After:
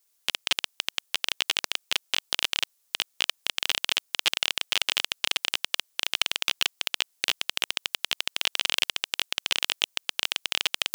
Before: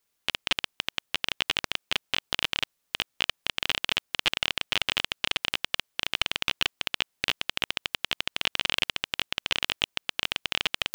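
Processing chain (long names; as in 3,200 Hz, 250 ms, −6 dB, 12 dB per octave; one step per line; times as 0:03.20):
bass and treble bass −12 dB, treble +10 dB
level −1.5 dB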